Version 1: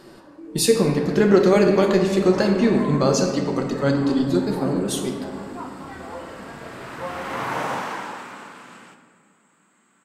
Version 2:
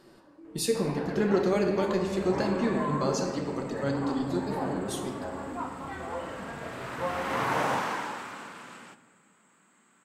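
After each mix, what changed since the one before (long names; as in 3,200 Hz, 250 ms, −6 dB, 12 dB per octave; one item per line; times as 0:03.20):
speech −10.0 dB
second sound: send −7.5 dB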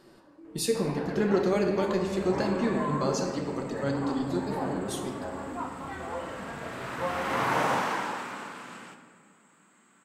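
second sound: send +7.5 dB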